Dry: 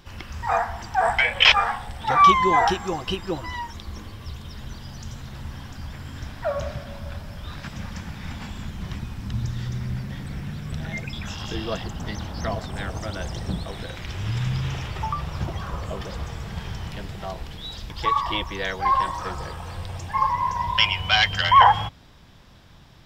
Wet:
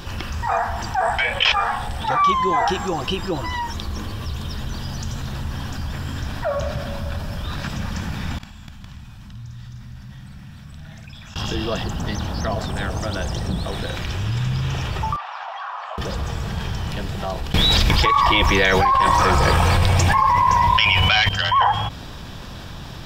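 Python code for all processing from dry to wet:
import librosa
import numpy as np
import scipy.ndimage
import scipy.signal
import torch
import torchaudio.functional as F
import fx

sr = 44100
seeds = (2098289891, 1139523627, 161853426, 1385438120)

y = fx.chain(x, sr, fx.peak_eq(hz=410.0, db=-14.0, octaves=0.87),
    fx.gate_flip(shuts_db=-32.0, range_db=-27),
    fx.echo_multitap(ms=(51, 299, 461), db=(-5.0, -8.5, -9.5)), at=(8.38, 11.36))
y = fx.chain(y, sr, fx.ellip_highpass(hz=760.0, order=4, stop_db=60),
    fx.spacing_loss(db_at_10k=34), at=(15.16, 15.98))
y = fx.chain(y, sr, fx.peak_eq(hz=2200.0, db=9.5, octaves=0.26),
    fx.env_flatten(amount_pct=100), at=(17.54, 21.29))
y = fx.notch(y, sr, hz=2100.0, q=9.7)
y = fx.env_flatten(y, sr, amount_pct=50)
y = F.gain(torch.from_numpy(y), -4.5).numpy()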